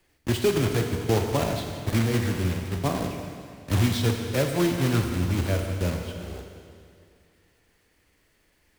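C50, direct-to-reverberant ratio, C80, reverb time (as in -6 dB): 4.0 dB, 3.5 dB, 5.0 dB, 2.3 s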